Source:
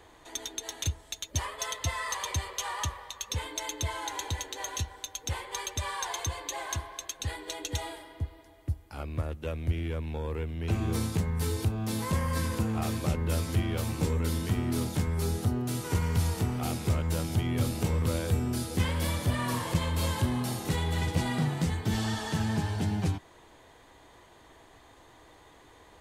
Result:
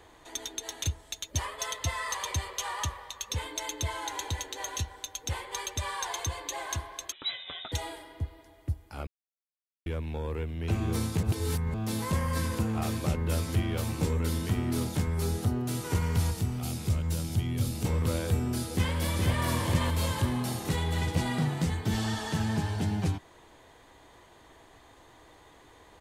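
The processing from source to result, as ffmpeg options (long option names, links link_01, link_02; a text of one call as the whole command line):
ffmpeg -i in.wav -filter_complex "[0:a]asettb=1/sr,asplit=3[link_01][link_02][link_03];[link_01]atrim=end=7.124[link_04];[link_02]atrim=start=7.12:end=7.72,asetpts=PTS-STARTPTS,afade=type=in:duration=0.004:curve=qsin,afade=type=out:start_time=0.596:duration=0.004:curve=qsin,lowpass=frequency=3400:width_type=q:width=0.5098,lowpass=frequency=3400:width_type=q:width=0.6013,lowpass=frequency=3400:width_type=q:width=0.9,lowpass=frequency=3400:width_type=q:width=2.563,afreqshift=-4000[link_05];[link_03]atrim=start=7.716[link_06];[link_04][link_05]acrossfade=duration=0.004:curve1=hsin:curve2=qsin[link_07];[link_07][link_06]acrossfade=duration=0.004:curve1=qsin:curve2=hsin,asettb=1/sr,asplit=3[link_08][link_09][link_10];[link_08]atrim=end=16.314[link_11];[link_09]atrim=start=16.31:end=17.85,asetpts=PTS-STARTPTS,afade=type=in:duration=0.004:curve=qsin,afade=type=out:start_time=1.536:duration=0.004:curve=qsin,acrossover=split=240|3000[link_12][link_13][link_14];[link_13]acompressor=threshold=-47dB:ratio=2:attack=3.2:release=140:knee=2.83:detection=peak[link_15];[link_12][link_15][link_14]amix=inputs=3:normalize=0[link_16];[link_10]atrim=start=17.846[link_17];[link_11][link_16]acrossfade=duration=0.004:curve1=hsin:curve2=qsin[link_18];[link_18][link_17]acrossfade=duration=0.004:curve1=qsin:curve2=hsin,asplit=2[link_19][link_20];[link_20]afade=type=in:start_time=18.73:duration=0.01,afade=type=out:start_time=19.48:duration=0.01,aecho=0:1:420|840|1260|1680|2100:0.707946|0.247781|0.0867234|0.0303532|0.0106236[link_21];[link_19][link_21]amix=inputs=2:normalize=0,asplit=5[link_22][link_23][link_24][link_25][link_26];[link_22]atrim=end=9.07,asetpts=PTS-STARTPTS,afade=type=out:start_time=9.066:duration=0.004:curve=hsin[link_27];[link_23]atrim=start=9.07:end=9.86,asetpts=PTS-STARTPTS,volume=0[link_28];[link_24]atrim=start=9.86:end=11.232,asetpts=PTS-STARTPTS,afade=type=in:duration=0.004:curve=hsin[link_29];[link_25]atrim=start=11.228:end=11.742,asetpts=PTS-STARTPTS,areverse[link_30];[link_26]atrim=start=11.738[link_31];[link_27][link_28][link_29]concat=n=3:v=0:a=1[link_32];[link_32][link_30]acrossfade=duration=0.004:curve1=hsin:curve2=hsin[link_33];[link_33][link_31]acrossfade=duration=0.004:curve1=hsin:curve2=hsin" out.wav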